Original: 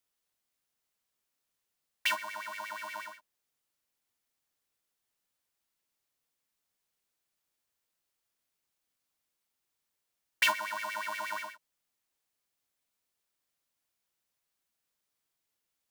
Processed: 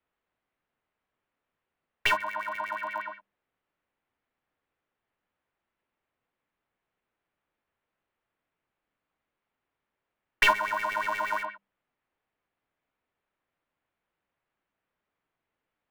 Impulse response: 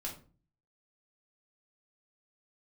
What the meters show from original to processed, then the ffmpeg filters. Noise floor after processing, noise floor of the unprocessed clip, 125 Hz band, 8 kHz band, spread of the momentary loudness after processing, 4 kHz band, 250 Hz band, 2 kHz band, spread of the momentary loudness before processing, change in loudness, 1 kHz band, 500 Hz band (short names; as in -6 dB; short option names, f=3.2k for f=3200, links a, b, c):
under -85 dBFS, -84 dBFS, n/a, -2.5 dB, 12 LU, +2.0 dB, +8.5 dB, +5.5 dB, 14 LU, +5.5 dB, +8.0 dB, +8.5 dB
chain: -filter_complex "[0:a]acrossover=split=280|570|3000[a][b][c][d];[d]acrusher=bits=4:dc=4:mix=0:aa=0.000001[e];[a][b][c][e]amix=inputs=4:normalize=0,highshelf=f=4.1k:g=-10,bandreject=f=50:t=h:w=6,bandreject=f=100:t=h:w=6,bandreject=f=150:t=h:w=6,bandreject=f=200:t=h:w=6,volume=8.5dB"